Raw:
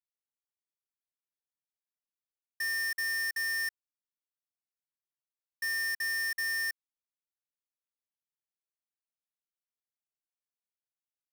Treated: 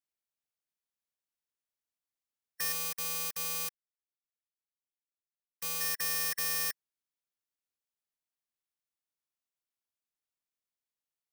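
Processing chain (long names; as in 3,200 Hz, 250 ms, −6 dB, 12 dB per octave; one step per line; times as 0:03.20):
ceiling on every frequency bin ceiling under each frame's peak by 25 dB
0:02.72–0:05.81: power curve on the samples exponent 2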